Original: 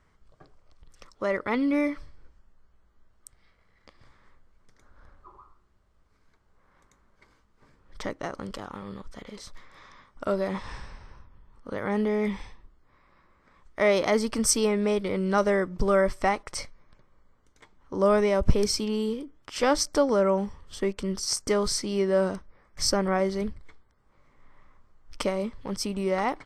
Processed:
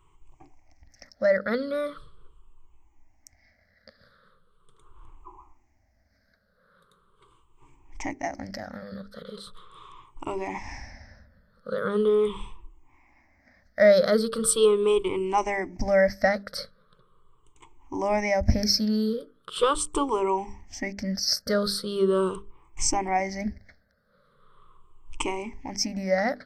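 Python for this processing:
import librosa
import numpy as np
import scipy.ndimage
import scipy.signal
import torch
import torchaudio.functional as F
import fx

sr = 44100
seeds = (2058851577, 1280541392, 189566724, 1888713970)

y = fx.spec_ripple(x, sr, per_octave=0.67, drift_hz=-0.4, depth_db=23)
y = fx.hum_notches(y, sr, base_hz=50, count=9)
y = F.gain(torch.from_numpy(y), -3.5).numpy()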